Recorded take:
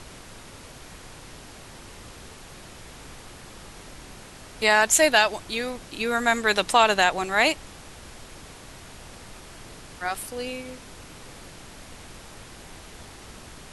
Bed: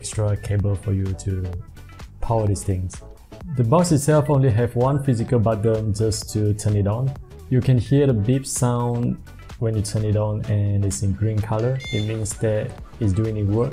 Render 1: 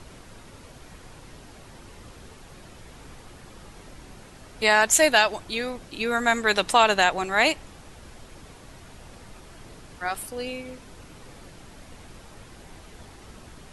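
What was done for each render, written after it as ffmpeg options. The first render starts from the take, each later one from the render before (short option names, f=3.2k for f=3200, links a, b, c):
-af "afftdn=nr=6:nf=-45"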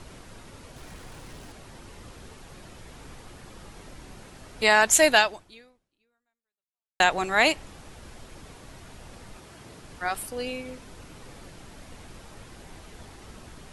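-filter_complex "[0:a]asettb=1/sr,asplit=3[a][b][c];[a]atrim=end=0.764[d];[b]atrim=start=0.76:end=1.52,asetpts=PTS-STARTPTS,afade=t=in:d=0.004:c=qsin,afade=t=out:st=0.756:d=0.004:c=qsin,aeval=exprs='val(0)+0.5*0.00316*sgn(val(0))':c=same[e];[c]atrim=start=1.516[f];[d][e]acrossfade=d=0.004:c1=hsin:c2=qsin[g];[g][f]acrossfade=d=0.004:c1=qsin:c2=hsin,asettb=1/sr,asplit=3[h][i][j];[h]atrim=end=9.374[k];[i]atrim=start=9.37:end=9.83,asetpts=PTS-STARTPTS,afade=t=in:d=0.004:c=qsin,afade=t=out:st=0.456:d=0.004:c=qsin,highpass=70[l];[j]atrim=start=9.826[m];[k][l]acrossfade=d=0.004:c1=hsin:c2=qsin[n];[n][m]acrossfade=d=0.004:c1=qsin:c2=hsin,asplit=2[o][p];[o]atrim=end=7,asetpts=PTS-STARTPTS,afade=t=out:st=5.19:d=1.81:c=exp[q];[p]atrim=start=7,asetpts=PTS-STARTPTS,afade=t=in:d=0.004:c=hsin[r];[q][r]concat=n=2:v=0:a=1"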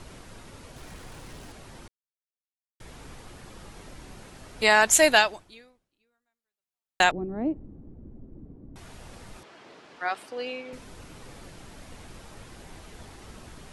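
-filter_complex "[0:a]asettb=1/sr,asplit=3[a][b][c];[a]atrim=end=7.114[d];[b]atrim=start=7.11:end=8.76,asetpts=PTS-STARTPTS,afade=t=in:d=0.004:c=qsin,afade=t=out:st=1.646:d=0.004:c=qsin,lowpass=f=280:t=q:w=1.9[e];[c]atrim=start=8.756[f];[d][e]acrossfade=d=0.004:c1=hsin:c2=qsin[g];[g][f]acrossfade=d=0.004:c1=qsin:c2=hsin,asettb=1/sr,asplit=3[h][i][j];[h]atrim=end=9.434[k];[i]atrim=start=9.43:end=10.73,asetpts=PTS-STARTPTS,afade=t=in:d=0.004:c=qsin,afade=t=out:st=1.296:d=0.004:c=qsin,highpass=320,lowpass=4.2k[l];[j]atrim=start=10.726[m];[k][l]acrossfade=d=0.004:c1=hsin:c2=qsin[n];[n][m]acrossfade=d=0.004:c1=qsin:c2=hsin,asplit=3[o][p][q];[o]atrim=end=1.88,asetpts=PTS-STARTPTS,afade=t=out:st=1.876:d=0.004:c=hsin[r];[p]atrim=start=1.88:end=2.8,asetpts=PTS-STARTPTS,volume=0[s];[q]atrim=start=2.8,asetpts=PTS-STARTPTS,afade=t=in:d=0.004:c=hsin[t];[r][s][t]concat=n=3:v=0:a=1"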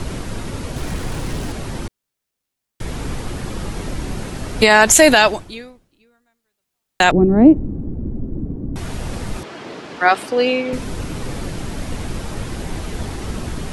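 -filter_complex "[0:a]acrossover=split=420[a][b];[a]acontrast=48[c];[c][b]amix=inputs=2:normalize=0,alimiter=level_in=15dB:limit=-1dB:release=50:level=0:latency=1"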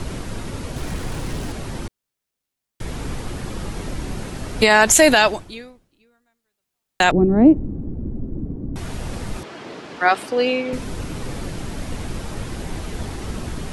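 -af "volume=-2.5dB"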